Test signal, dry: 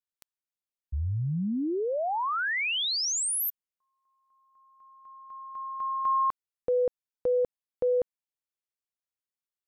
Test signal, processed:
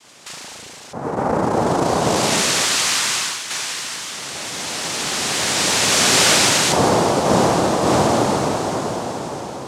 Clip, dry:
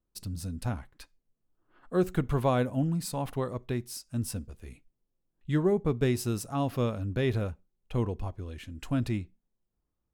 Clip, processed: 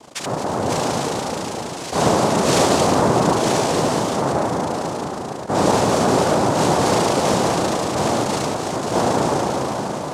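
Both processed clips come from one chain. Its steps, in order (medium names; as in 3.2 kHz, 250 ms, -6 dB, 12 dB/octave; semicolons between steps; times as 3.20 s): spring tank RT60 2.2 s, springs 36 ms, chirp 40 ms, DRR -9 dB; power-law waveshaper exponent 0.35; noise-vocoded speech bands 2; trim -6 dB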